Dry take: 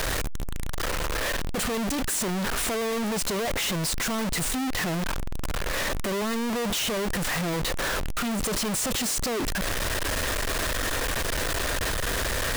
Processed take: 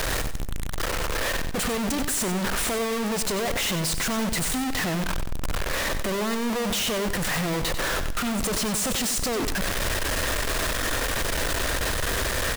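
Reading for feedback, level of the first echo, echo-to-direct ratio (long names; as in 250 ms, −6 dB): 32%, −10.0 dB, −9.5 dB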